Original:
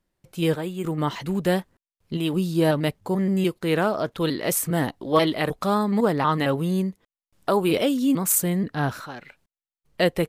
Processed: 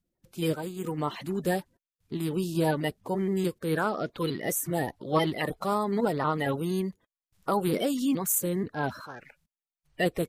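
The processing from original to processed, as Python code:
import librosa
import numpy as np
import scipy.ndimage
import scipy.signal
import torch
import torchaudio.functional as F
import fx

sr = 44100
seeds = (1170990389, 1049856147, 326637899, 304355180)

y = fx.spec_quant(x, sr, step_db=30)
y = y * 10.0 ** (-5.0 / 20.0)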